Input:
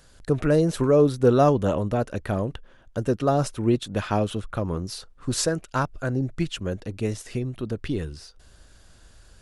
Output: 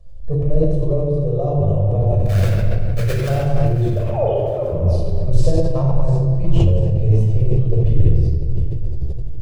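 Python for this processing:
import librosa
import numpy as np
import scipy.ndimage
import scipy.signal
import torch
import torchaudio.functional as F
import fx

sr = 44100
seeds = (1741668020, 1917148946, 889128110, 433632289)

y = fx.sine_speech(x, sr, at=(3.97, 4.72))
y = fx.tilt_eq(y, sr, slope=-4.0)
y = fx.rider(y, sr, range_db=5, speed_s=0.5)
y = fx.fixed_phaser(y, sr, hz=610.0, stages=4)
y = fx.sample_hold(y, sr, seeds[0], rate_hz=2100.0, jitter_pct=20, at=(2.19, 3.28), fade=0.02)
y = fx.echo_feedback(y, sr, ms=692, feedback_pct=40, wet_db=-15)
y = fx.room_shoebox(y, sr, seeds[1], volume_m3=3000.0, walls='mixed', distance_m=6.0)
y = fx.sustainer(y, sr, db_per_s=26.0)
y = y * librosa.db_to_amplitude(-11.5)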